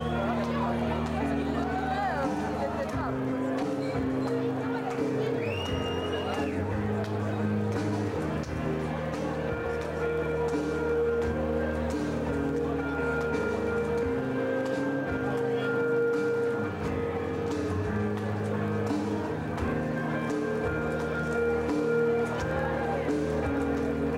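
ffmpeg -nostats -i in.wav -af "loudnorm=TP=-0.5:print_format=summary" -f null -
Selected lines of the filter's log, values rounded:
Input Integrated:    -29.4 LUFS
Input True Peak:     -17.3 dBTP
Input LRA:             2.1 LU
Input Threshold:     -39.4 LUFS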